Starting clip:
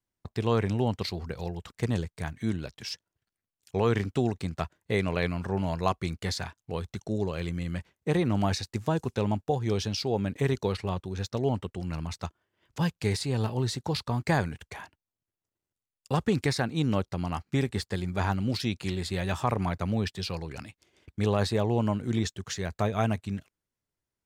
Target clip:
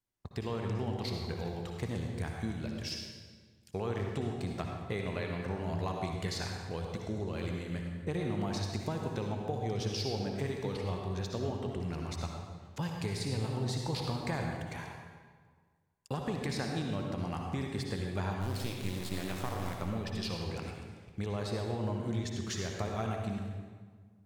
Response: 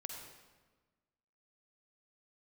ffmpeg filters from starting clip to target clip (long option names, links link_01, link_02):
-filter_complex "[0:a]acompressor=threshold=-29dB:ratio=6,asplit=3[link_01][link_02][link_03];[link_01]afade=type=out:start_time=18.4:duration=0.02[link_04];[link_02]acrusher=bits=4:dc=4:mix=0:aa=0.000001,afade=type=in:start_time=18.4:duration=0.02,afade=type=out:start_time=19.8:duration=0.02[link_05];[link_03]afade=type=in:start_time=19.8:duration=0.02[link_06];[link_04][link_05][link_06]amix=inputs=3:normalize=0[link_07];[1:a]atrim=start_sample=2205,asetrate=35280,aresample=44100[link_08];[link_07][link_08]afir=irnorm=-1:irlink=0"